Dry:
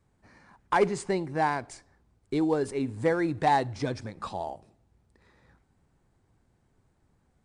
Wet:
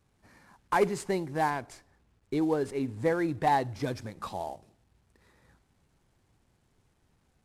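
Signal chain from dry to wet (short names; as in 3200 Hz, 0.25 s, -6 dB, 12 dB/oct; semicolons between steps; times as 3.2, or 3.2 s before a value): CVSD 64 kbps; 1.5–3.83 high shelf 5100 Hz -6 dB; gain -1.5 dB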